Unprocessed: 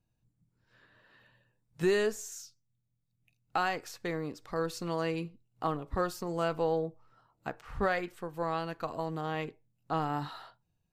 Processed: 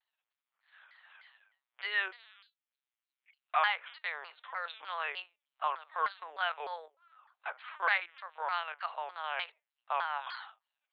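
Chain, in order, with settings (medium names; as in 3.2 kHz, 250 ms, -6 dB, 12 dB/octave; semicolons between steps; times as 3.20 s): LPC vocoder at 8 kHz pitch kept; Bessel high-pass 1.3 kHz, order 6; vibrato with a chosen wave saw down 3.3 Hz, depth 250 cents; trim +7.5 dB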